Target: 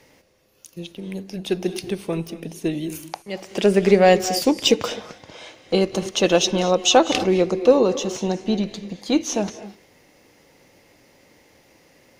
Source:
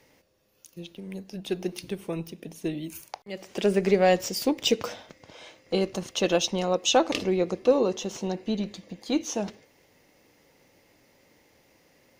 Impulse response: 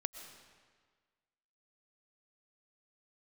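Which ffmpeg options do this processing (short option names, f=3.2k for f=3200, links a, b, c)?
-filter_complex "[0:a]asplit=2[a][b];[1:a]atrim=start_sample=2205,atrim=end_sample=6615,asetrate=25137,aresample=44100[c];[b][c]afir=irnorm=-1:irlink=0,volume=6.5dB[d];[a][d]amix=inputs=2:normalize=0,volume=-4.5dB"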